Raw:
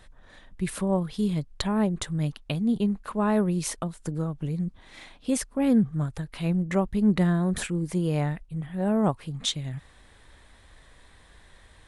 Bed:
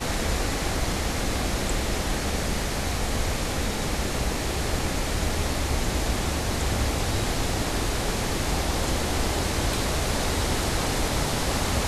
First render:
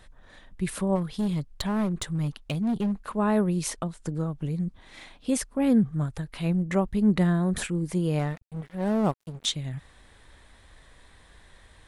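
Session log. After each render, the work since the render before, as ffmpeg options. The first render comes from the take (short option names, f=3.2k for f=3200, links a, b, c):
-filter_complex "[0:a]asplit=3[a][b][c];[a]afade=t=out:st=0.95:d=0.02[d];[b]asoftclip=type=hard:threshold=-22.5dB,afade=t=in:st=0.95:d=0.02,afade=t=out:st=3.05:d=0.02[e];[c]afade=t=in:st=3.05:d=0.02[f];[d][e][f]amix=inputs=3:normalize=0,asettb=1/sr,asplit=3[g][h][i];[g]atrim=end=3.704[j];[h]atrim=start=3.7:end=4.27,asetpts=PTS-STARTPTS,afade=t=in:d=0.004:c=qsin,afade=t=out:st=0.566:d=0.004:c=qsin,lowpass=9.4k[k];[i]atrim=start=4.266[l];[j][k]acrossfade=d=0.004:c1=hsin:c2=qsin[m];[m][l]acrossfade=d=0.004:c1=qsin:c2=hsin,asettb=1/sr,asplit=3[n][o][p];[n]atrim=end=8.194[q];[o]atrim=start=8.19:end=9.45,asetpts=PTS-STARTPTS,afade=t=in:d=0.004:c=qsin,afade=t=out:st=1.256:d=0.004:c=qsin,aeval=exprs='sgn(val(0))*max(abs(val(0))-0.0112,0)':c=same[r];[p]atrim=start=9.446[s];[q][r]acrossfade=d=0.004:c1=hsin:c2=qsin[t];[t][s]acrossfade=d=0.004:c1=qsin:c2=hsin"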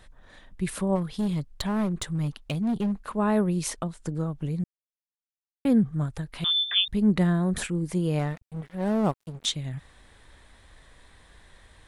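-filter_complex "[0:a]asettb=1/sr,asplit=3[a][b][c];[a]atrim=end=6.444[d];[b]atrim=start=6.44:end=6.88,asetpts=PTS-STARTPTS,afade=t=in:d=0.004:c=qsin,afade=t=out:st=0.436:d=0.004:c=qsin,lowpass=f=3.1k:t=q:w=0.5098,lowpass=f=3.1k:t=q:w=0.6013,lowpass=f=3.1k:t=q:w=0.9,lowpass=f=3.1k:t=q:w=2.563,afreqshift=-3700[e];[c]atrim=start=6.876[f];[d][e]acrossfade=d=0.004:c1=hsin:c2=qsin[g];[g][f]acrossfade=d=0.004:c1=qsin:c2=hsin,asplit=3[h][i][j];[h]atrim=end=4.64,asetpts=PTS-STARTPTS,afade=t=out:st=4.636:d=0.004:c=hsin[k];[i]atrim=start=4.64:end=5.65,asetpts=PTS-STARTPTS,volume=0[l];[j]atrim=start=5.65,asetpts=PTS-STARTPTS,afade=t=in:d=0.004:c=hsin[m];[k][l][m]concat=n=3:v=0:a=1"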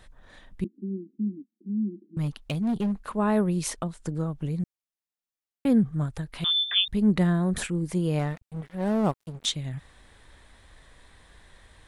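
-filter_complex "[0:a]asettb=1/sr,asplit=3[a][b][c];[a]atrim=end=0.644[d];[b]atrim=start=0.64:end=2.17,asetpts=PTS-STARTPTS,afade=t=in:d=0.004:c=qsin,afade=t=out:st=1.526:d=0.004:c=qsin,asuperpass=centerf=270:order=12:qfactor=1.6[e];[c]atrim=start=2.166[f];[d][e]acrossfade=d=0.004:c1=hsin:c2=qsin[g];[g][f]acrossfade=d=0.004:c1=qsin:c2=hsin"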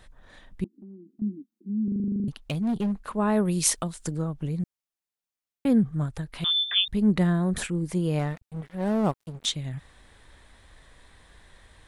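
-filter_complex "[0:a]asettb=1/sr,asplit=3[a][b][c];[a]atrim=end=0.644[d];[b]atrim=start=0.64:end=1.22,asetpts=PTS-STARTPTS,afade=t=in:d=0.004:c=qsin,afade=t=out:st=0.576:d=0.004:c=qsin,acompressor=threshold=-44dB:ratio=4:attack=3.2:release=140:knee=1:detection=peak[e];[c]atrim=start=1.216[f];[d][e]acrossfade=d=0.004:c1=hsin:c2=qsin[g];[g][f]acrossfade=d=0.004:c1=qsin:c2=hsin,asettb=1/sr,asplit=3[h][i][j];[h]atrim=end=3.454[k];[i]atrim=start=3.45:end=4.17,asetpts=PTS-STARTPTS,afade=t=in:d=0.004:c=qsin,afade=t=out:st=0.716:d=0.004:c=qsin,highshelf=f=2.8k:g=11[l];[j]atrim=start=4.166[m];[k][l]acrossfade=d=0.004:c1=hsin:c2=qsin[n];[n][m]acrossfade=d=0.004:c1=qsin:c2=hsin,asplit=12[o][p][q][r][s][t][u][v][w][x][y][z];[o]atrim=end=1.882[aa];[p]atrim=start=1.838:end=1.882[ab];[q]atrim=start=1.838:end=1.882[ac];[r]atrim=start=1.838:end=1.882[ad];[s]atrim=start=1.838:end=1.882[ae];[t]atrim=start=1.838:end=1.882[af];[u]atrim=start=1.838:end=1.882[ag];[v]atrim=start=1.838:end=1.882[ah];[w]atrim=start=1.838:end=1.882[ai];[x]atrim=start=1.838:end=1.882[aj];[y]atrim=start=1.838:end=1.882[ak];[z]atrim=start=2.278[al];[aa][ab]acrossfade=d=0.004:c1=hsin:c2=hsin[am];[am][ac]acrossfade=d=0.004:c1=hsin:c2=hsin[an];[an][ad]acrossfade=d=0.004:c1=hsin:c2=hsin[ao];[ao][ae]acrossfade=d=0.004:c1=hsin:c2=hsin[ap];[ap][af]acrossfade=d=0.004:c1=hsin:c2=hsin[aq];[aq][ag]acrossfade=d=0.004:c1=hsin:c2=hsin[ar];[ar][ah]acrossfade=d=0.004:c1=hsin:c2=hsin[as];[as][ai]acrossfade=d=0.004:c1=hsin:c2=hsin[at];[at][aj]acrossfade=d=0.004:c1=hsin:c2=hsin[au];[au][ak]acrossfade=d=0.004:c1=hsin:c2=hsin[av];[av][al]acrossfade=d=0.004:c1=hsin:c2=hsin"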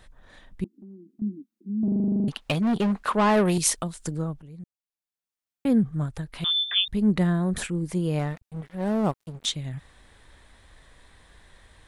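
-filter_complex "[0:a]asettb=1/sr,asplit=3[a][b][c];[a]atrim=end=1.834[d];[b]atrim=start=1.83:end=3.58,asetpts=PTS-STARTPTS,afade=t=in:d=0.004:c=qsin,afade=t=out:st=1.746:d=0.004:c=qsin,asplit=2[e][f];[f]highpass=f=720:p=1,volume=21dB,asoftclip=type=tanh:threshold=-12.5dB[g];[e][g]amix=inputs=2:normalize=0,lowpass=f=3.6k:p=1,volume=-6dB[h];[c]atrim=start=3.576[i];[d][h]acrossfade=d=0.004:c1=hsin:c2=qsin[j];[j][i]acrossfade=d=0.004:c1=qsin:c2=hsin,asplit=2[k][l];[k]atrim=end=4.42,asetpts=PTS-STARTPTS,afade=t=out:st=4.416:d=0.004:c=hsin:silence=0.133352[m];[l]atrim=start=4.42,asetpts=PTS-STARTPTS,afade=t=in:d=1.28:silence=0.133352[n];[m][n]concat=n=2:v=0:a=1"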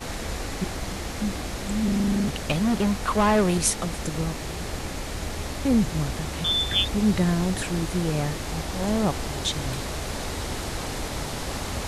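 -filter_complex "[1:a]volume=-5.5dB[a];[0:a][a]amix=inputs=2:normalize=0"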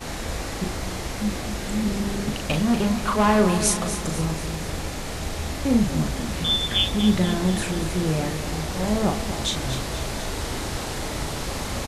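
-filter_complex "[0:a]asplit=2[a][b];[b]adelay=38,volume=-5dB[c];[a][c]amix=inputs=2:normalize=0,aecho=1:1:242|484|726|968|1210|1452:0.299|0.161|0.0871|0.047|0.0254|0.0137"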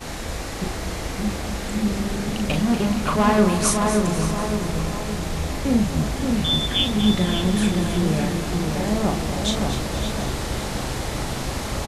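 -filter_complex "[0:a]asplit=2[a][b];[b]adelay=570,lowpass=f=2.2k:p=1,volume=-3.5dB,asplit=2[c][d];[d]adelay=570,lowpass=f=2.2k:p=1,volume=0.53,asplit=2[e][f];[f]adelay=570,lowpass=f=2.2k:p=1,volume=0.53,asplit=2[g][h];[h]adelay=570,lowpass=f=2.2k:p=1,volume=0.53,asplit=2[i][j];[j]adelay=570,lowpass=f=2.2k:p=1,volume=0.53,asplit=2[k][l];[l]adelay=570,lowpass=f=2.2k:p=1,volume=0.53,asplit=2[m][n];[n]adelay=570,lowpass=f=2.2k:p=1,volume=0.53[o];[a][c][e][g][i][k][m][o]amix=inputs=8:normalize=0"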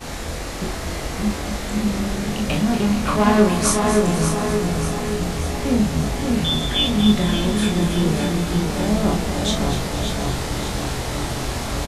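-filter_complex "[0:a]asplit=2[a][b];[b]adelay=24,volume=-4.5dB[c];[a][c]amix=inputs=2:normalize=0,asplit=2[d][e];[e]aecho=0:1:587|1174|1761|2348|2935|3522:0.335|0.181|0.0977|0.0527|0.0285|0.0154[f];[d][f]amix=inputs=2:normalize=0"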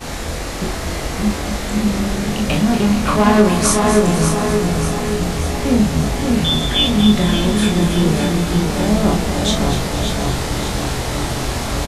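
-af "volume=4dB,alimiter=limit=-2dB:level=0:latency=1"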